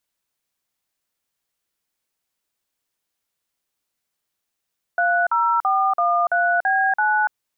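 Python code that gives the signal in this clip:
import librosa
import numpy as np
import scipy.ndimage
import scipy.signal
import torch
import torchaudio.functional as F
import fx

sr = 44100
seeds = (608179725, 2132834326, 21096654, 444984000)

y = fx.dtmf(sr, digits='30413B9', tone_ms=288, gap_ms=46, level_db=-18.5)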